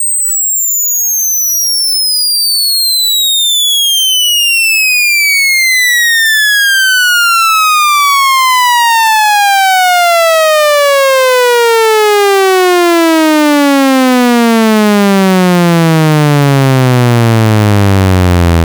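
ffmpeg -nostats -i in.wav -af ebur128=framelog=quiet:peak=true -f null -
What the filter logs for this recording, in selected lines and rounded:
Integrated loudness:
  I:          -6.9 LUFS
  Threshold: -16.9 LUFS
Loudness range:
  LRA:         1.8 LU
  Threshold: -26.7 LUFS
  LRA low:    -7.6 LUFS
  LRA high:   -5.8 LUFS
True peak:
  Peak:       -1.3 dBFS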